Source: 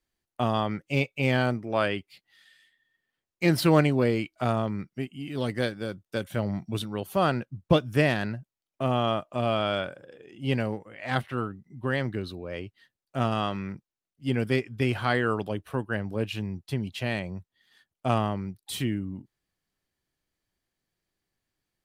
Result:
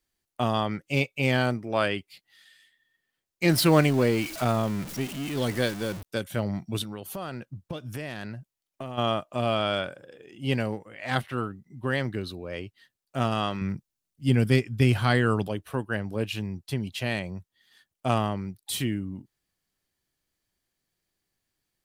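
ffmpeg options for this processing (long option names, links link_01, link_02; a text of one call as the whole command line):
ffmpeg -i in.wav -filter_complex "[0:a]asettb=1/sr,asplit=3[link_01][link_02][link_03];[link_01]atrim=end=3.494[link_04];[link_02]atrim=start=3.49:end=6.03,asetpts=PTS-STARTPTS,afade=type=in:duration=0.004:curve=qsin,afade=type=out:start_time=2.536:duration=0.004:curve=qsin,aeval=exprs='val(0)+0.5*0.02*sgn(val(0))':channel_layout=same[link_05];[link_03]atrim=start=6.026[link_06];[link_04][link_05]acrossfade=duration=0.004:curve1=hsin:curve2=qsin[link_07];[link_07][link_06]acrossfade=duration=0.004:curve1=qsin:curve2=hsin,asplit=3[link_08][link_09][link_10];[link_08]afade=type=out:start_time=6.82:duration=0.02[link_11];[link_09]acompressor=threshold=-32dB:ratio=6:attack=3.2:release=140:knee=1:detection=peak,afade=type=in:start_time=6.82:duration=0.02,afade=type=out:start_time=8.97:duration=0.02[link_12];[link_10]afade=type=in:start_time=8.97:duration=0.02[link_13];[link_11][link_12][link_13]amix=inputs=3:normalize=0,asettb=1/sr,asplit=3[link_14][link_15][link_16];[link_14]atrim=end=13.614[link_17];[link_15]atrim=start=13.61:end=15.48,asetpts=PTS-STARTPTS,afade=type=in:duration=0.004:curve=qsin,afade=type=out:start_time=1.866:duration=0.004:curve=qsin,bass=frequency=250:gain=8,treble=frequency=4000:gain=3[link_18];[link_16]atrim=start=15.476[link_19];[link_17][link_18]acrossfade=duration=0.004:curve1=hsin:curve2=qsin[link_20];[link_20][link_19]acrossfade=duration=0.004:curve1=qsin:curve2=hsin,highshelf=frequency=3900:gain=6" out.wav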